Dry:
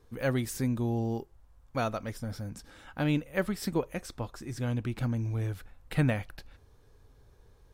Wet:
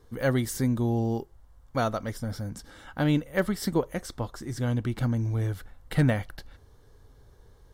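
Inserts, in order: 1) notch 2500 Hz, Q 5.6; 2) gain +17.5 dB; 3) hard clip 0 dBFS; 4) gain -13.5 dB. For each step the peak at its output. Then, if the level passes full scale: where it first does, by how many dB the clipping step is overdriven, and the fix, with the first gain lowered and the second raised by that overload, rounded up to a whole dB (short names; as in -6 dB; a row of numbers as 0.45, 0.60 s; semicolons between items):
-13.5, +4.0, 0.0, -13.5 dBFS; step 2, 4.0 dB; step 2 +13.5 dB, step 4 -9.5 dB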